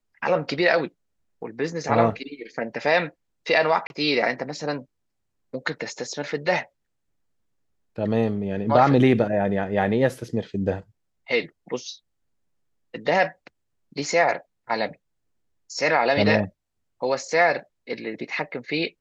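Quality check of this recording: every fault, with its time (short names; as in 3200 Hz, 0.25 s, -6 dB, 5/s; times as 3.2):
3.87–3.9 gap 31 ms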